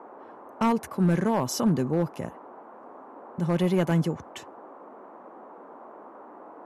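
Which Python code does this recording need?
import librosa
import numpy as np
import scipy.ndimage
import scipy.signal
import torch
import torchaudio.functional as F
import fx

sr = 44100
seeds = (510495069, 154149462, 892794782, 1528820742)

y = fx.fix_declip(x, sr, threshold_db=-16.0)
y = fx.noise_reduce(y, sr, print_start_s=4.75, print_end_s=5.25, reduce_db=24.0)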